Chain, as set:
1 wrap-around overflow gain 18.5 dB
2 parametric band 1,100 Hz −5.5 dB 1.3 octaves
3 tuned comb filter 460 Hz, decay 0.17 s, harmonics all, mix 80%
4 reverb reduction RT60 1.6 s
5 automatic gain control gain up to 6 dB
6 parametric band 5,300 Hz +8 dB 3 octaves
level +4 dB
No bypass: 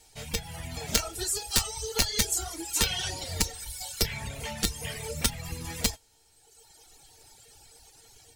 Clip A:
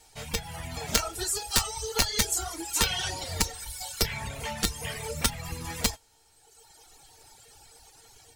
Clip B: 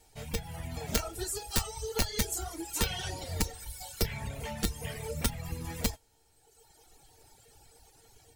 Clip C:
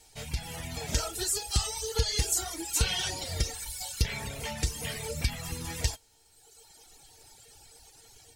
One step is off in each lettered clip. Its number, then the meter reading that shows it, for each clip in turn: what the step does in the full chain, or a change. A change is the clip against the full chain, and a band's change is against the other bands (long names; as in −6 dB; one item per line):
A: 2, 1 kHz band +4.0 dB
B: 6, 4 kHz band −6.5 dB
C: 1, change in crest factor −3.0 dB